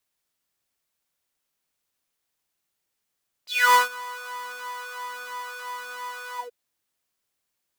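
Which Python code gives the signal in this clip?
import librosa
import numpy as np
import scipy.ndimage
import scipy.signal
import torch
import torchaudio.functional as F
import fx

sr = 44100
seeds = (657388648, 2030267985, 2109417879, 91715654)

y = fx.sub_patch_pwm(sr, seeds[0], note=71, wave2='saw', interval_st=-12, detune_cents=10, level2_db=-9.0, sub_db=-15.0, noise_db=-11.5, kind='highpass', cutoff_hz=420.0, q=9.9, env_oct=3.5, env_decay_s=0.21, env_sustain_pct=40, attack_ms=275.0, decay_s=0.14, sustain_db=-20, release_s=0.12, note_s=2.91, lfo_hz=3.0, width_pct=43, width_swing_pct=7)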